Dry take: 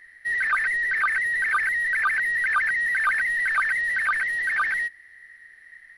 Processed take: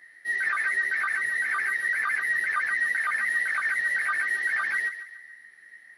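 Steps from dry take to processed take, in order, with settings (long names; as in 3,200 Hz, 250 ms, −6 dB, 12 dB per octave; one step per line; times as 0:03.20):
high-pass filter 200 Hz 12 dB per octave
parametric band 2,200 Hz −5 dB 1.8 octaves
brickwall limiter −24 dBFS, peak gain reduction 6.5 dB
multi-voice chorus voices 2, 0.41 Hz, delay 15 ms, depth 3 ms
feedback echo with a high-pass in the loop 141 ms, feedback 42%, high-pass 540 Hz, level −10.5 dB
level +5 dB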